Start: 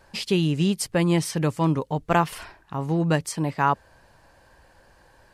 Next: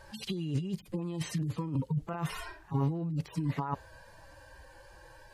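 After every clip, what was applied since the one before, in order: median-filter separation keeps harmonic; negative-ratio compressor -30 dBFS, ratio -1; gain -2.5 dB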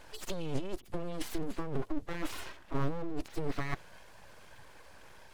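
full-wave rectifier; gain +1 dB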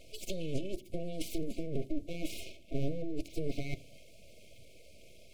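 brick-wall FIR band-stop 700–2100 Hz; on a send at -15.5 dB: reverb RT60 0.50 s, pre-delay 4 ms

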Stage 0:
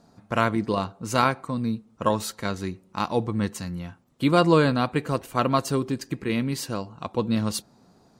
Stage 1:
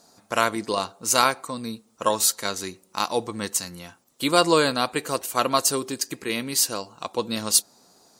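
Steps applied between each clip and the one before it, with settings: tone controls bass -14 dB, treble +14 dB; gain +1.5 dB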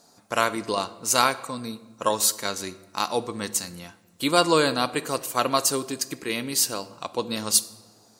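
shoebox room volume 970 m³, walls mixed, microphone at 0.3 m; gain -1 dB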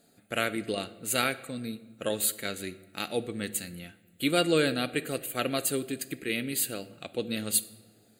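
fixed phaser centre 2400 Hz, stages 4; gain -1 dB

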